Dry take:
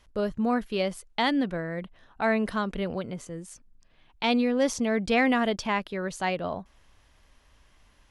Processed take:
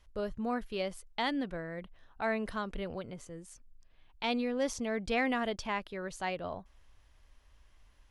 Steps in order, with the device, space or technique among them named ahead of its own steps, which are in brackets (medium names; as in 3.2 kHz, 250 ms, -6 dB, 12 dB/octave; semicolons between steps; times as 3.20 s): low shelf boost with a cut just above (bass shelf 96 Hz +8 dB; peaking EQ 190 Hz -4.5 dB 1.2 oct); trim -7 dB